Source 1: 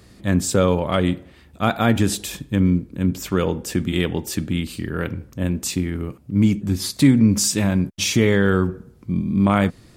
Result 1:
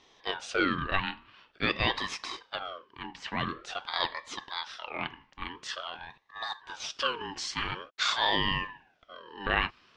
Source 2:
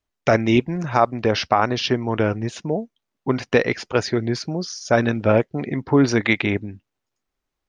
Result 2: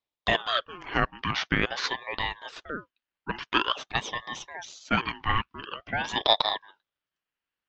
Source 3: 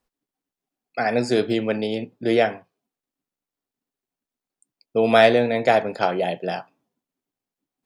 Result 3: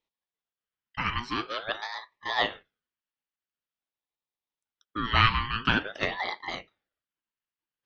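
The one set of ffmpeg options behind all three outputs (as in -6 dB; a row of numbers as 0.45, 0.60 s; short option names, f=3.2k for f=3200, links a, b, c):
-af "highpass=f=440:w=0.5412,highpass=f=440:w=1.3066,equalizer=f=460:t=q:w=4:g=-7,equalizer=f=730:t=q:w=4:g=-9,equalizer=f=1.2k:t=q:w=4:g=-4,equalizer=f=2.3k:t=q:w=4:g=6,equalizer=f=3.2k:t=q:w=4:g=-4,lowpass=f=4.1k:w=0.5412,lowpass=f=4.1k:w=1.3066,aeval=exprs='val(0)*sin(2*PI*1000*n/s+1000*0.45/0.47*sin(2*PI*0.47*n/s))':c=same"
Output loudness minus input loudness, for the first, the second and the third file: -11.5, -7.5, -7.5 LU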